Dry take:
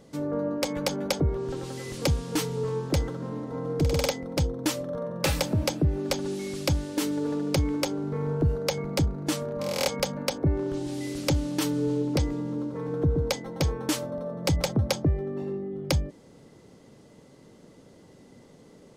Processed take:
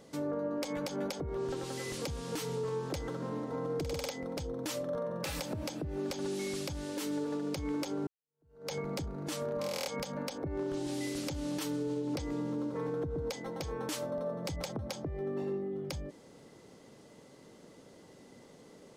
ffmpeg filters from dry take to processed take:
ffmpeg -i in.wav -filter_complex "[0:a]asplit=2[link_01][link_02];[link_01]atrim=end=8.07,asetpts=PTS-STARTPTS,afade=type=out:start_time=8.066:duration=0.004:curve=hsin[link_03];[link_02]atrim=start=8.07,asetpts=PTS-STARTPTS,afade=type=in:duration=0.65:curve=exp[link_04];[link_03][link_04]concat=n=2:v=0:a=1,acompressor=threshold=-25dB:ratio=6,lowshelf=frequency=230:gain=-8.5,alimiter=level_in=3dB:limit=-24dB:level=0:latency=1:release=105,volume=-3dB" out.wav

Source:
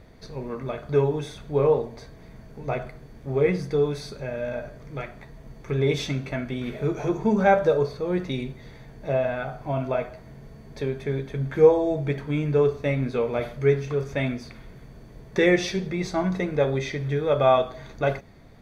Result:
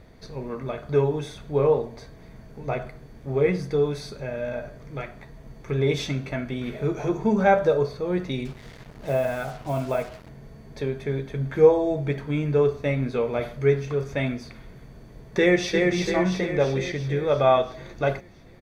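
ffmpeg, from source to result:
ffmpeg -i in.wav -filter_complex "[0:a]asettb=1/sr,asplit=3[link_01][link_02][link_03];[link_01]atrim=end=8.454[link_04];[link_02]atrim=start=8.45:end=10.29,asetpts=PTS-STARTPTS,afade=type=in:duration=0.004:curve=qsin,afade=type=out:start_time=1.836:duration=0.004:curve=qsin,acrusher=bits=6:mix=0:aa=0.5[link_05];[link_03]atrim=start=10.286[link_06];[link_04][link_05]acrossfade=duration=0.004:curve1=hsin:curve2=qsin[link_07];[link_07][link_06]acrossfade=duration=0.004:curve1=qsin:curve2=hsin,asplit=2[link_08][link_09];[link_09]afade=type=in:start_time=15.39:duration=0.01,afade=type=out:start_time=15.84:duration=0.01,aecho=0:1:340|680|1020|1360|1700|2040|2380|2720|3060:0.707946|0.424767|0.25486|0.152916|0.0917498|0.0550499|0.0330299|0.019818|0.0118908[link_10];[link_08][link_10]amix=inputs=2:normalize=0" out.wav

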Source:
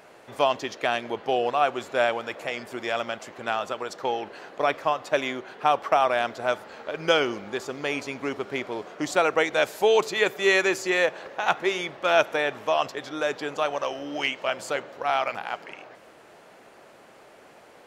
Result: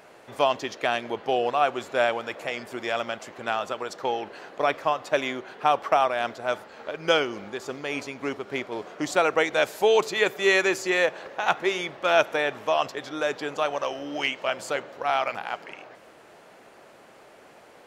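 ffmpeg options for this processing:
ffmpeg -i in.wav -filter_complex "[0:a]asplit=3[link_01][link_02][link_03];[link_01]afade=type=out:start_time=5.96:duration=0.02[link_04];[link_02]tremolo=f=3.5:d=0.35,afade=type=in:start_time=5.96:duration=0.02,afade=type=out:start_time=8.71:duration=0.02[link_05];[link_03]afade=type=in:start_time=8.71:duration=0.02[link_06];[link_04][link_05][link_06]amix=inputs=3:normalize=0" out.wav

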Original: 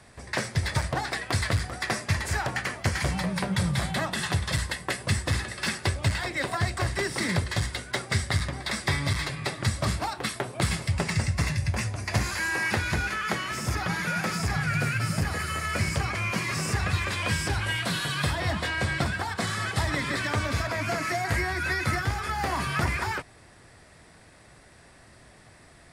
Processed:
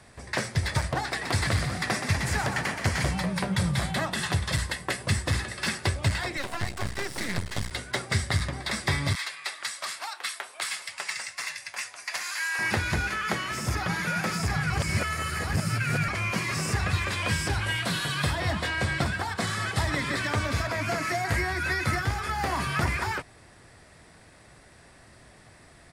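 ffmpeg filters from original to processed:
ffmpeg -i in.wav -filter_complex "[0:a]asplit=3[link_01][link_02][link_03];[link_01]afade=type=out:start_time=1.21:duration=0.02[link_04];[link_02]asplit=8[link_05][link_06][link_07][link_08][link_09][link_10][link_11][link_12];[link_06]adelay=124,afreqshift=35,volume=-7dB[link_13];[link_07]adelay=248,afreqshift=70,volume=-11.9dB[link_14];[link_08]adelay=372,afreqshift=105,volume=-16.8dB[link_15];[link_09]adelay=496,afreqshift=140,volume=-21.6dB[link_16];[link_10]adelay=620,afreqshift=175,volume=-26.5dB[link_17];[link_11]adelay=744,afreqshift=210,volume=-31.4dB[link_18];[link_12]adelay=868,afreqshift=245,volume=-36.3dB[link_19];[link_05][link_13][link_14][link_15][link_16][link_17][link_18][link_19]amix=inputs=8:normalize=0,afade=type=in:start_time=1.21:duration=0.02,afade=type=out:start_time=3.07:duration=0.02[link_20];[link_03]afade=type=in:start_time=3.07:duration=0.02[link_21];[link_04][link_20][link_21]amix=inputs=3:normalize=0,asettb=1/sr,asplit=3[link_22][link_23][link_24];[link_22]atrim=end=6.374[link_25];[link_23]atrim=start=6.37:end=7.71,asetpts=PTS-STARTPTS,afade=type=in:duration=0.004:curve=qsin,afade=type=out:start_time=1.336:duration=0.004:curve=qsin,aeval=exprs='max(val(0),0)':channel_layout=same[link_26];[link_24]atrim=start=7.706[link_27];[link_25][link_26]acrossfade=duration=0.004:curve1=hsin:curve2=qsin[link_28];[link_28][link_27]acrossfade=duration=0.004:curve1=qsin:curve2=hsin,asettb=1/sr,asplit=3[link_29][link_30][link_31];[link_29]atrim=end=9.154[link_32];[link_30]atrim=start=9.15:end=12.59,asetpts=PTS-STARTPTS,afade=type=in:duration=0.004:curve=qsin,afade=type=out:start_time=3.436:duration=0.004:curve=qsin,highpass=1200[link_33];[link_31]atrim=start=12.586[link_34];[link_32][link_33]acrossfade=duration=0.004:curve1=hsin:curve2=qsin[link_35];[link_35][link_34]acrossfade=duration=0.004:curve1=qsin:curve2=hsin,asplit=3[link_36][link_37][link_38];[link_36]atrim=end=14.702[link_39];[link_37]atrim=start=14.698:end=16.082,asetpts=PTS-STARTPTS,areverse[link_40];[link_38]atrim=start=16.078[link_41];[link_39][link_40]acrossfade=duration=0.004:curve1=hsin:curve2=hsin[link_42];[link_42][link_41]acrossfade=duration=0.004:curve1=hsin:curve2=hsin" out.wav

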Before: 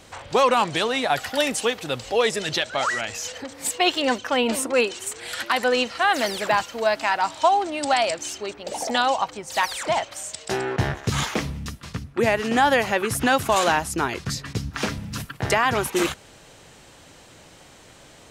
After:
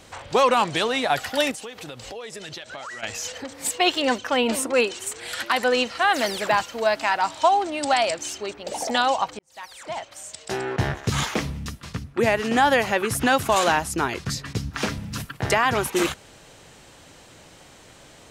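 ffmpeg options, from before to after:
ffmpeg -i in.wav -filter_complex "[0:a]asettb=1/sr,asplit=3[link_01][link_02][link_03];[link_01]atrim=end=1.514[link_04];[link_02]atrim=start=1.51:end=3.03,asetpts=PTS-STARTPTS,afade=type=in:duration=0.004:curve=qsin,afade=type=out:start_time=1.516:duration=0.004:curve=qsin,acompressor=threshold=-33dB:ratio=8:attack=3.2:release=140:knee=1:detection=peak[link_05];[link_03]atrim=start=3.026[link_06];[link_04][link_05]acrossfade=duration=0.004:curve1=hsin:curve2=qsin[link_07];[link_07][link_06]acrossfade=duration=0.004:curve1=qsin:curve2=hsin,asplit=2[link_08][link_09];[link_08]atrim=end=9.39,asetpts=PTS-STARTPTS,afade=type=out:start_time=9.386:duration=0.004:curve=hsin[link_10];[link_09]atrim=start=9.39,asetpts=PTS-STARTPTS,afade=type=in:duration=1.53[link_11];[link_10][link_11]concat=n=2:v=0:a=1" out.wav

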